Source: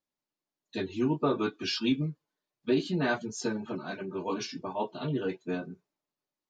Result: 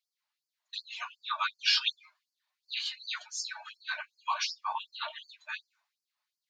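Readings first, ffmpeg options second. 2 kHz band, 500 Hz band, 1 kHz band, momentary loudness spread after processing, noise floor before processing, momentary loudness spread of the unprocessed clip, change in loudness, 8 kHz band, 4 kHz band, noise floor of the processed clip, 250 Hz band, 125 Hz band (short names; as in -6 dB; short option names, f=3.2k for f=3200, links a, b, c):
+2.0 dB, -24.5 dB, +1.0 dB, 15 LU, under -85 dBFS, 9 LU, -1.5 dB, +3.0 dB, +7.0 dB, under -85 dBFS, under -40 dB, under -40 dB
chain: -af "equalizer=f=1k:t=o:w=1:g=7,equalizer=f=2k:t=o:w=1:g=7,equalizer=f=4k:t=o:w=1:g=7,aeval=exprs='val(0)+0.00178*(sin(2*PI*60*n/s)+sin(2*PI*2*60*n/s)/2+sin(2*PI*3*60*n/s)/3+sin(2*PI*4*60*n/s)/4+sin(2*PI*5*60*n/s)/5)':c=same,afftfilt=real='re*gte(b*sr/1024,570*pow(4400/570,0.5+0.5*sin(2*PI*2.7*pts/sr)))':imag='im*gte(b*sr/1024,570*pow(4400/570,0.5+0.5*sin(2*PI*2.7*pts/sr)))':win_size=1024:overlap=0.75"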